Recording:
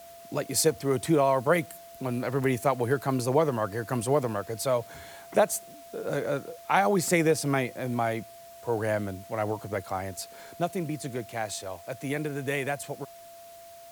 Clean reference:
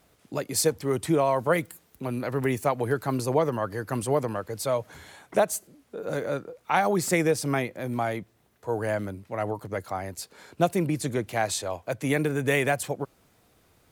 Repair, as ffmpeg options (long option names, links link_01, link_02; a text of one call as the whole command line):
ffmpeg -i in.wav -af "bandreject=frequency=680:width=30,afwtdn=0.002,asetnsamples=nb_out_samples=441:pad=0,asendcmd='10.55 volume volume 6dB',volume=0dB" out.wav